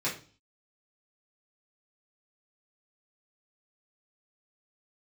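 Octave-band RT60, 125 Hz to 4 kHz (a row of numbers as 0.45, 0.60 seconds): 0.55, 0.50, 0.40, 0.35, 0.35, 0.45 seconds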